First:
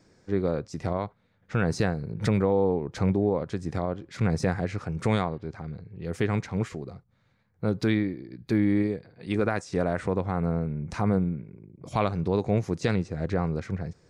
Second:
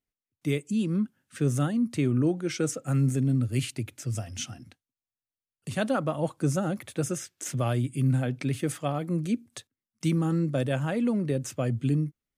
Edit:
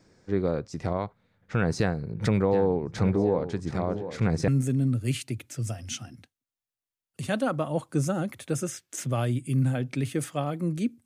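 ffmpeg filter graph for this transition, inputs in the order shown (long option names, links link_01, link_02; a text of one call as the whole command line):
ffmpeg -i cue0.wav -i cue1.wav -filter_complex "[0:a]asplit=3[link_01][link_02][link_03];[link_01]afade=type=out:start_time=2.51:duration=0.02[link_04];[link_02]aecho=1:1:724|1448|2172:0.282|0.0902|0.0289,afade=type=in:start_time=2.51:duration=0.02,afade=type=out:start_time=4.48:duration=0.02[link_05];[link_03]afade=type=in:start_time=4.48:duration=0.02[link_06];[link_04][link_05][link_06]amix=inputs=3:normalize=0,apad=whole_dur=11.05,atrim=end=11.05,atrim=end=4.482[link_07];[1:a]atrim=start=2.958:end=9.53[link_08];[link_07][link_08]acrossfade=duration=0.004:curve1=hsin:curve2=hsin" out.wav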